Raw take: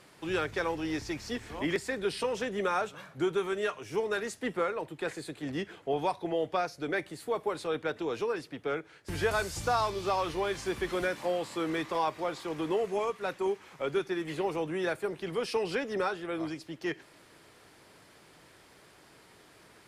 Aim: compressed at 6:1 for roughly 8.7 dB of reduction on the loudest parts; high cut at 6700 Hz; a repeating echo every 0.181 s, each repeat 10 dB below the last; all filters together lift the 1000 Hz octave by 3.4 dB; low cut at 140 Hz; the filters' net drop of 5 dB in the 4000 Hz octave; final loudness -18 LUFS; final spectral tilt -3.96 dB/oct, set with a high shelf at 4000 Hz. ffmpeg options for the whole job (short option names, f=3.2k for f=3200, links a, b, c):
-af "highpass=140,lowpass=6.7k,equalizer=f=1k:t=o:g=5,highshelf=f=4k:g=-6,equalizer=f=4k:t=o:g=-3,acompressor=threshold=-32dB:ratio=6,aecho=1:1:181|362|543|724:0.316|0.101|0.0324|0.0104,volume=19dB"